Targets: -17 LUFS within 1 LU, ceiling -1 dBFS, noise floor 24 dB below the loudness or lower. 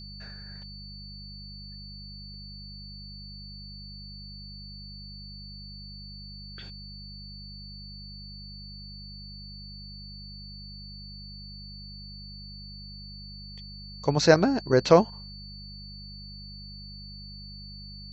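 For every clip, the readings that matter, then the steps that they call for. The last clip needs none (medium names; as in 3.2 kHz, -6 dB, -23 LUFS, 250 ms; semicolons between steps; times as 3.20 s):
hum 50 Hz; highest harmonic 200 Hz; hum level -42 dBFS; steady tone 4.5 kHz; tone level -44 dBFS; loudness -33.0 LUFS; peak level -4.0 dBFS; loudness target -17.0 LUFS
-> de-hum 50 Hz, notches 4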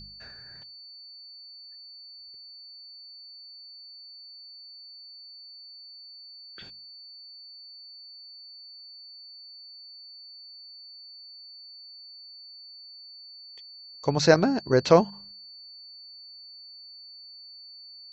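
hum not found; steady tone 4.5 kHz; tone level -44 dBFS
-> band-stop 4.5 kHz, Q 30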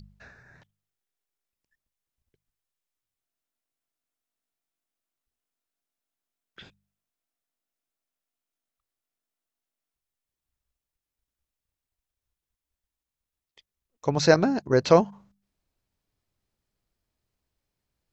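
steady tone not found; loudness -22.5 LUFS; peak level -3.5 dBFS; loudness target -17.0 LUFS
-> trim +5.5 dB; peak limiter -1 dBFS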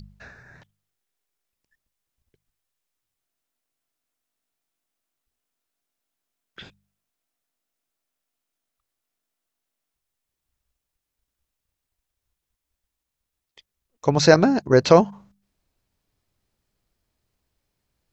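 loudness -17.5 LUFS; peak level -1.0 dBFS; noise floor -83 dBFS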